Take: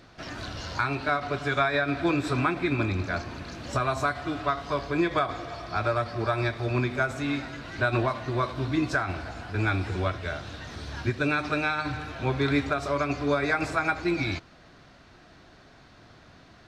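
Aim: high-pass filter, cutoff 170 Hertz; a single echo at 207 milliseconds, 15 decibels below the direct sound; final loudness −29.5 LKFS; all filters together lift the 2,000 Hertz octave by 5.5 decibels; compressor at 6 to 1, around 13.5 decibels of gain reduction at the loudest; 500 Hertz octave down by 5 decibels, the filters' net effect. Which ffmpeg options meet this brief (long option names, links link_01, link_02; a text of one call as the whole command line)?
ffmpeg -i in.wav -af "highpass=170,equalizer=frequency=500:width_type=o:gain=-7.5,equalizer=frequency=2000:width_type=o:gain=8.5,acompressor=threshold=-33dB:ratio=6,aecho=1:1:207:0.178,volume=6.5dB" out.wav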